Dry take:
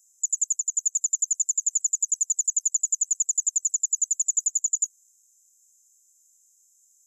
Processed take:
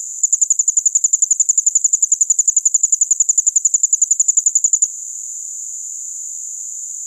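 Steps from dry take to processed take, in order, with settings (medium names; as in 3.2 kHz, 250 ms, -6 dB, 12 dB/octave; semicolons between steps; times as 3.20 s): spectral levelling over time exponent 0.4; tape noise reduction on one side only encoder only; trim +8 dB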